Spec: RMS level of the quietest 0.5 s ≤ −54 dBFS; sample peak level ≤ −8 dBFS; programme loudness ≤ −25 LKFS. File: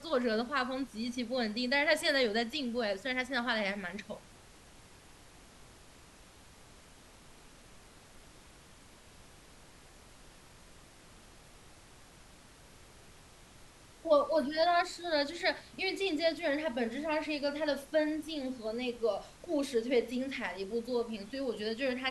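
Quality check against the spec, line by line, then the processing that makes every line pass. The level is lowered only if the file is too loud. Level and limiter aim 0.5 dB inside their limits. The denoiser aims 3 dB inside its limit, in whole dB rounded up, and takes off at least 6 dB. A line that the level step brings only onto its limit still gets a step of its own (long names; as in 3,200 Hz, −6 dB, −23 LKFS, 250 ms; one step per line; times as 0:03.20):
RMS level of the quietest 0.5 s −57 dBFS: in spec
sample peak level −16.0 dBFS: in spec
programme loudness −33.0 LKFS: in spec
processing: no processing needed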